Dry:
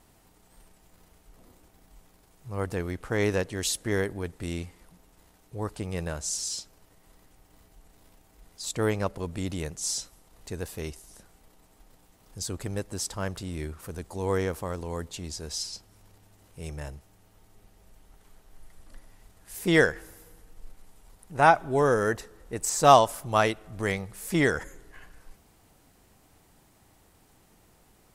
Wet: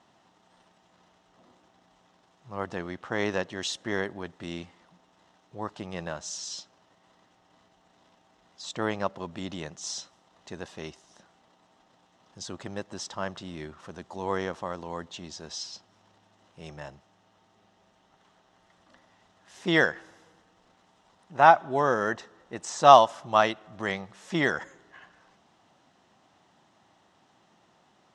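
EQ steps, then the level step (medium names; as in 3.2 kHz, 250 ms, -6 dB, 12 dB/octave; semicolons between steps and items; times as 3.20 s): cabinet simulation 160–5300 Hz, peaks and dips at 290 Hz -4 dB, 450 Hz -9 dB, 1.5 kHz -3 dB, 2.3 kHz -8 dB, 4.6 kHz -8 dB; bass shelf 240 Hz -7.5 dB; +4.0 dB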